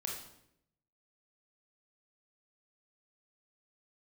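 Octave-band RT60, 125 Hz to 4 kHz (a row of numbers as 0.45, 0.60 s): 1.1, 0.95, 0.85, 0.65, 0.65, 0.60 s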